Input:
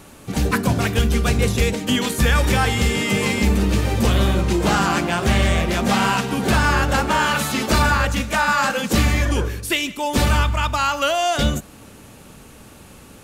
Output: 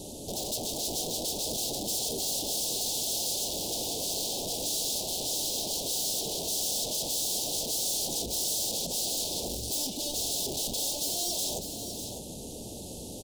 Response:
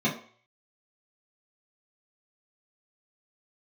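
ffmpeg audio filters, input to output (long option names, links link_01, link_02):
-filter_complex "[0:a]acrossover=split=4500[link_01][link_02];[link_02]acompressor=threshold=-42dB:ratio=4:attack=1:release=60[link_03];[link_01][link_03]amix=inputs=2:normalize=0,aeval=exprs='(mod(13.3*val(0)+1,2)-1)/13.3':channel_layout=same,highshelf=frequency=8500:gain=-11,asoftclip=type=tanh:threshold=-38dB,asuperstop=centerf=1600:order=8:qfactor=0.6,bass=frequency=250:gain=-6,treble=frequency=4000:gain=6,aecho=1:1:601:0.376,volume=6.5dB"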